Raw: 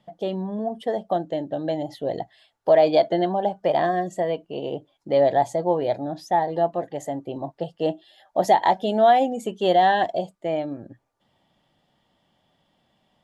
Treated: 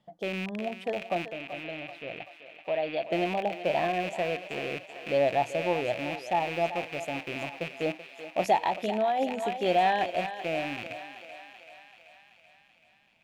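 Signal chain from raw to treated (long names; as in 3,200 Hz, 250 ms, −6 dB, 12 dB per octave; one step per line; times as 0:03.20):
loose part that buzzes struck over −41 dBFS, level −19 dBFS
0:01.28–0:03.05: transistor ladder low-pass 3,900 Hz, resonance 35%
feedback echo with a high-pass in the loop 383 ms, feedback 66%, high-pass 520 Hz, level −10 dB
0:08.62–0:09.19: downward compressor, threshold −17 dBFS, peak gain reduction 6.5 dB
level −6.5 dB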